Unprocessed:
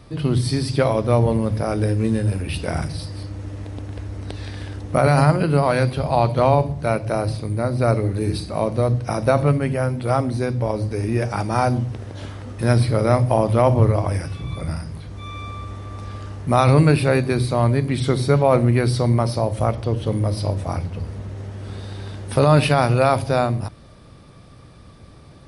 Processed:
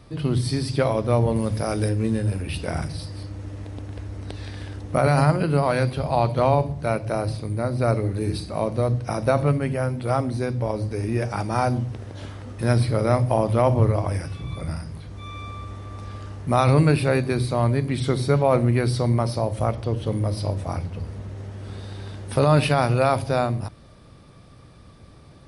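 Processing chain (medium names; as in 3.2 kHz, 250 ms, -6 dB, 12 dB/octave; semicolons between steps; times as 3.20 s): 1.36–1.89 s: treble shelf 3.5 kHz +9 dB; trim -3 dB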